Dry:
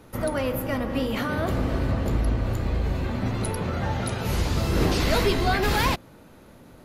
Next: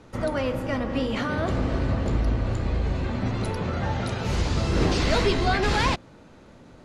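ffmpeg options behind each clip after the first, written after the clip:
ffmpeg -i in.wav -af "lowpass=frequency=8000:width=0.5412,lowpass=frequency=8000:width=1.3066" out.wav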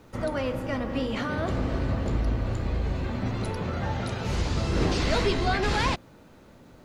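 ffmpeg -i in.wav -af "acrusher=bits=10:mix=0:aa=0.000001,volume=-2.5dB" out.wav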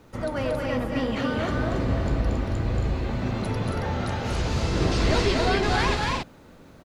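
ffmpeg -i in.wav -af "aecho=1:1:230.3|274.1:0.631|0.631" out.wav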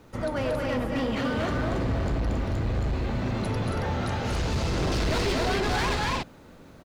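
ffmpeg -i in.wav -af "asoftclip=type=hard:threshold=-22.5dB" out.wav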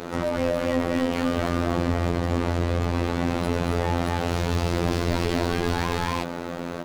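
ffmpeg -i in.wav -filter_complex "[0:a]asplit=2[link_01][link_02];[link_02]highpass=frequency=720:poles=1,volume=31dB,asoftclip=type=tanh:threshold=-22dB[link_03];[link_01][link_03]amix=inputs=2:normalize=0,lowpass=frequency=6100:poles=1,volume=-6dB,tiltshelf=frequency=790:gain=5.5,afftfilt=real='hypot(re,im)*cos(PI*b)':imag='0':win_size=2048:overlap=0.75,volume=3dB" out.wav

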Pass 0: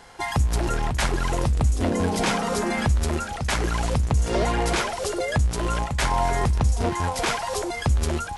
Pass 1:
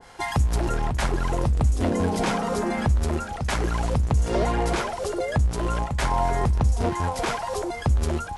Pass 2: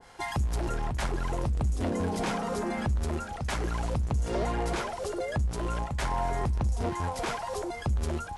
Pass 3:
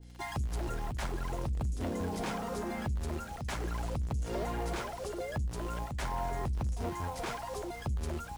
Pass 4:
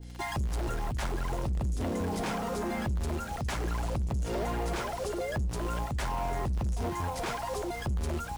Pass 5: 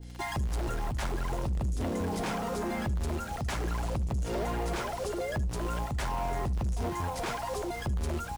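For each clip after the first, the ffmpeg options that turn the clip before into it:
ffmpeg -i in.wav -af "adynamicequalizer=threshold=0.0112:dfrequency=1500:dqfactor=0.7:tfrequency=1500:tqfactor=0.7:attack=5:release=100:ratio=0.375:range=3.5:mode=cutabove:tftype=highshelf" out.wav
ffmpeg -i in.wav -af "asoftclip=type=tanh:threshold=-15.5dB,volume=-5dB" out.wav
ffmpeg -i in.wav -filter_complex "[0:a]aeval=exprs='val(0)+0.00631*(sin(2*PI*60*n/s)+sin(2*PI*2*60*n/s)/2+sin(2*PI*3*60*n/s)/3+sin(2*PI*4*60*n/s)/4+sin(2*PI*5*60*n/s)/5)':channel_layout=same,acrossover=split=560|2200[link_01][link_02][link_03];[link_02]acrusher=bits=7:mix=0:aa=0.000001[link_04];[link_01][link_04][link_03]amix=inputs=3:normalize=0,volume=-5.5dB" out.wav
ffmpeg -i in.wav -filter_complex "[0:a]asplit=2[link_01][link_02];[link_02]alimiter=level_in=9.5dB:limit=-24dB:level=0:latency=1:release=261,volume=-9.5dB,volume=2dB[link_03];[link_01][link_03]amix=inputs=2:normalize=0,asoftclip=type=hard:threshold=-27dB" out.wav
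ffmpeg -i in.wav -af "aecho=1:1:74:0.0794" out.wav

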